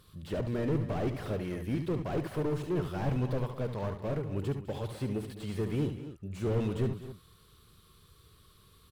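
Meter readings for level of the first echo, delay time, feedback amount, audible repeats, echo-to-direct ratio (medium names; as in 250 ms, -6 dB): -8.0 dB, 72 ms, no regular repeats, 3, -6.5 dB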